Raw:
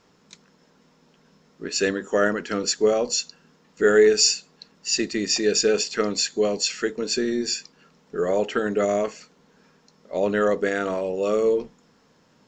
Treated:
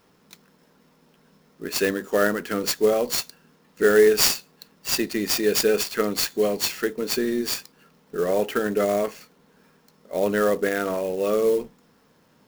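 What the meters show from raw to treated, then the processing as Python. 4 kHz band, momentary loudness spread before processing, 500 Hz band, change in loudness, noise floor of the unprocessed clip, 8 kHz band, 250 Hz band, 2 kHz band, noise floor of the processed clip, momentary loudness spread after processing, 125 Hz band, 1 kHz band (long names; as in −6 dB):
−2.0 dB, 9 LU, 0.0 dB, 0.0 dB, −60 dBFS, −2.5 dB, 0.0 dB, 0.0 dB, −60 dBFS, 9 LU, +0.5 dB, +0.5 dB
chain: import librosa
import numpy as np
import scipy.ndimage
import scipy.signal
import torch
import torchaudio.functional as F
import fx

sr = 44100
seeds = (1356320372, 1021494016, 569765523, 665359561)

y = fx.clock_jitter(x, sr, seeds[0], jitter_ms=0.026)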